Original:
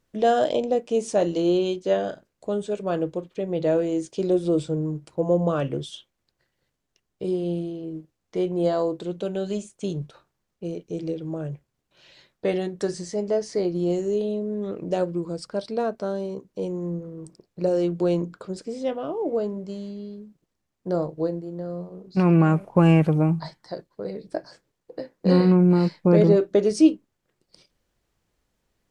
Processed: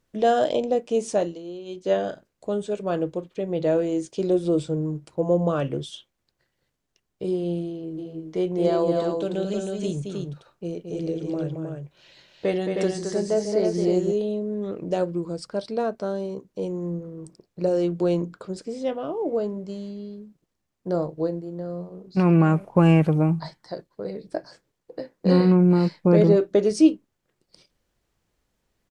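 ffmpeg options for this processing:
-filter_complex "[0:a]asplit=3[s0][s1][s2];[s0]afade=t=out:st=7.97:d=0.02[s3];[s1]aecho=1:1:221|314:0.501|0.631,afade=t=in:st=7.97:d=0.02,afade=t=out:st=14.11:d=0.02[s4];[s2]afade=t=in:st=14.11:d=0.02[s5];[s3][s4][s5]amix=inputs=3:normalize=0,asplit=3[s6][s7][s8];[s6]atrim=end=1.39,asetpts=PTS-STARTPTS,afade=t=out:st=1.14:d=0.25:silence=0.16788[s9];[s7]atrim=start=1.39:end=1.65,asetpts=PTS-STARTPTS,volume=0.168[s10];[s8]atrim=start=1.65,asetpts=PTS-STARTPTS,afade=t=in:d=0.25:silence=0.16788[s11];[s9][s10][s11]concat=n=3:v=0:a=1"

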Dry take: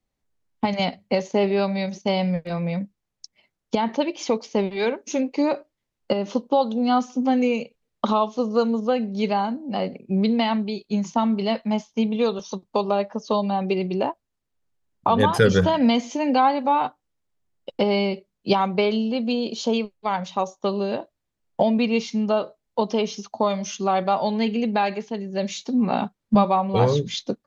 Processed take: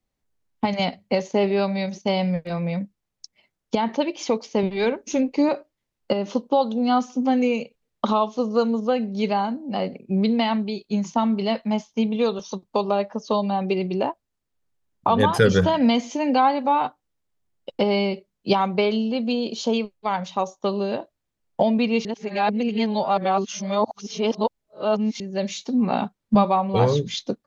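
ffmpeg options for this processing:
-filter_complex "[0:a]asettb=1/sr,asplit=3[s0][s1][s2];[s0]atrim=end=4.634[s3];[s1]atrim=start=4.63:end=5.49,asetpts=PTS-STARTPTS,afade=t=in:d=0.004:c=qsin,afade=t=out:st=0.856:d=0.004:c=qsin,lowshelf=f=140:g=11[s4];[s2]atrim=start=5.486[s5];[s3][s4]acrossfade=d=0.004:c1=hsin:c2=qsin[s6];[s6][s5]acrossfade=d=0.004:c1=qsin:c2=hsin,asplit=3[s7][s8][s9];[s7]atrim=end=22.052[s10];[s8]atrim=start=22.048:end=25.202,asetpts=PTS-STARTPTS,areverse[s11];[s9]atrim=start=25.198[s12];[s10][s11]acrossfade=d=0.004:c1=hsin:c2=hsin[s13];[s13][s12]acrossfade=d=0.004:c1=hsin:c2=hsin"

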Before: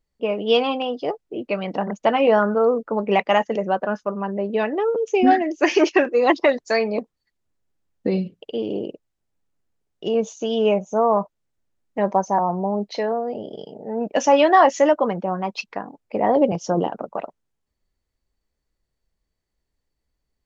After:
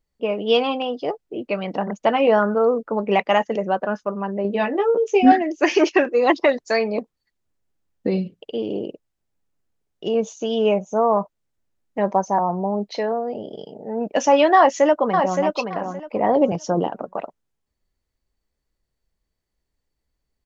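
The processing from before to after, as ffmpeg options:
-filter_complex "[0:a]asettb=1/sr,asplit=3[s0][s1][s2];[s0]atrim=end=4.434[s3];[s1]atrim=start=4.43:end=5.32,asetpts=PTS-STARTPTS,afade=t=in:d=0.004:c=qsin,afade=t=out:st=0.886:d=0.004:c=qsin,asplit=2[s4][s5];[s5]adelay=15,volume=0.708[s6];[s4][s6]amix=inputs=2:normalize=0,atrim=end_sample=39249[s7];[s2]atrim=start=5.316[s8];[s3][s7]acrossfade=d=0.004:c1=hsin:c2=qsin[s9];[s9][s8]acrossfade=d=0.004:c1=qsin:c2=hsin,asplit=2[s10][s11];[s11]afade=t=in:st=14.56:d=0.01,afade=t=out:st=15.42:d=0.01,aecho=0:1:570|1140|1710:0.530884|0.106177|0.0212354[s12];[s10][s12]amix=inputs=2:normalize=0"

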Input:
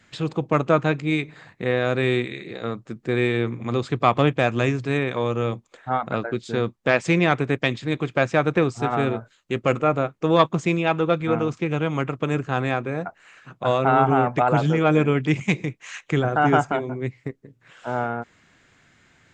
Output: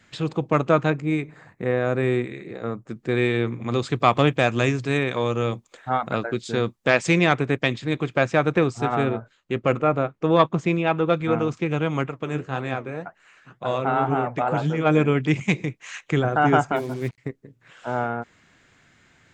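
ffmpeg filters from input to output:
-filter_complex "[0:a]asettb=1/sr,asplit=3[s0][s1][s2];[s0]atrim=end=0.904[s3];[s1]atrim=start=0.9:end=2.89,asetpts=PTS-STARTPTS,afade=t=in:d=0.004:c=qsin,afade=t=out:st=1.986:d=0.004:c=qsin,equalizer=f=3700:t=o:w=1.4:g=-11[s4];[s2]atrim=start=2.886[s5];[s3][s4]acrossfade=d=0.004:c1=hsin:c2=qsin[s6];[s6][s5]acrossfade=d=0.004:c1=qsin:c2=hsin,asettb=1/sr,asplit=3[s7][s8][s9];[s7]atrim=end=3.724[s10];[s8]atrim=start=3.72:end=7.33,asetpts=PTS-STARTPTS,afade=t=in:d=0.004:c=qsin,afade=t=out:st=3.606:d=0.004:c=qsin,highshelf=f=3800:g=6.5[s11];[s9]atrim=start=7.326[s12];[s10][s11]acrossfade=d=0.004:c1=hsin:c2=qsin[s13];[s13][s12]acrossfade=d=0.004:c1=qsin:c2=hsin,asettb=1/sr,asplit=3[s14][s15][s16];[s14]atrim=end=9.034[s17];[s15]atrim=start=9.03:end=11.08,asetpts=PTS-STARTPTS,afade=t=in:d=0.004:c=qsin,afade=t=out:st=2.046:d=0.004:c=qsin,lowpass=f=3200:p=1[s18];[s16]atrim=start=11.076[s19];[s17][s18]acrossfade=d=0.004:c1=hsin:c2=qsin[s20];[s20][s19]acrossfade=d=0.004:c1=qsin:c2=hsin,asplit=3[s21][s22][s23];[s21]afade=t=out:st=12.05:d=0.02[s24];[s22]flanger=delay=4.2:depth=9.5:regen=63:speed=1.9:shape=triangular,afade=t=in:st=12.05:d=0.02,afade=t=out:st=14.85:d=0.02[s25];[s23]afade=t=in:st=14.85:d=0.02[s26];[s24][s25][s26]amix=inputs=3:normalize=0,asettb=1/sr,asplit=3[s27][s28][s29];[s27]atrim=end=16.764[s30];[s28]atrim=start=16.76:end=17.18,asetpts=PTS-STARTPTS,afade=t=in:d=0.004:c=qsin,afade=t=out:st=0.416:d=0.004:c=qsin,acrusher=bits=6:mix=0:aa=0.5[s31];[s29]atrim=start=17.176[s32];[s30][s31]acrossfade=d=0.004:c1=hsin:c2=qsin[s33];[s33][s32]acrossfade=d=0.004:c1=qsin:c2=hsin"

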